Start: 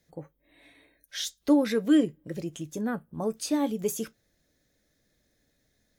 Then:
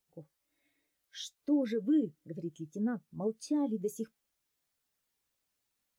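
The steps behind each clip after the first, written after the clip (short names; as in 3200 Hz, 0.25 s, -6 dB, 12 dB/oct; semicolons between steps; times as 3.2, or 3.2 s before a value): limiter -21.5 dBFS, peak gain reduction 9 dB; added noise white -57 dBFS; spectral expander 1.5:1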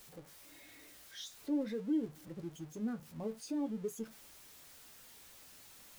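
zero-crossing step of -44.5 dBFS; flange 0.49 Hz, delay 8.6 ms, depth 5.3 ms, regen -58%; gain -2 dB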